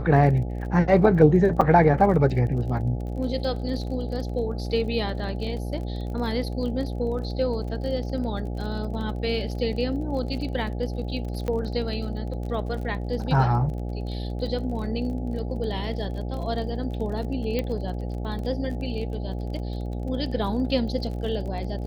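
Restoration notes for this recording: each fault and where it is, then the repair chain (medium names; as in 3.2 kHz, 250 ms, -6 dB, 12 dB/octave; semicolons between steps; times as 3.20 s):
buzz 60 Hz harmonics 14 -30 dBFS
crackle 31 per s -34 dBFS
1.61–1.62 s: dropout 5.8 ms
11.48 s: pop -17 dBFS
17.59 s: pop -14 dBFS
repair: de-click; de-hum 60 Hz, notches 14; interpolate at 1.61 s, 5.8 ms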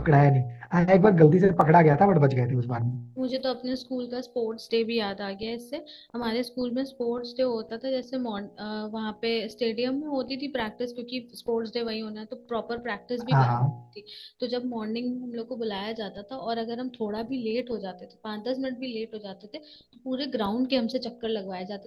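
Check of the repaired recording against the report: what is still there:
17.59 s: pop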